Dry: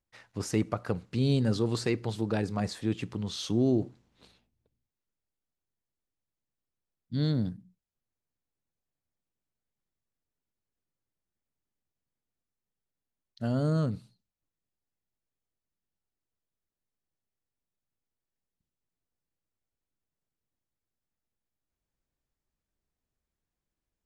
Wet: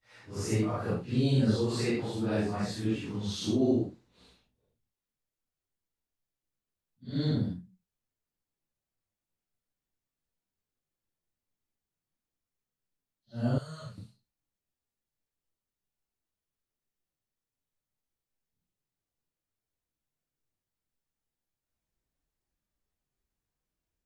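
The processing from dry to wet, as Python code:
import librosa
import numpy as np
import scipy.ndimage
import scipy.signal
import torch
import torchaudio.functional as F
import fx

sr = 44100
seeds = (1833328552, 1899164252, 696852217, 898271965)

y = fx.phase_scramble(x, sr, seeds[0], window_ms=200)
y = fx.tone_stack(y, sr, knobs='10-0-10', at=(13.58, 13.98))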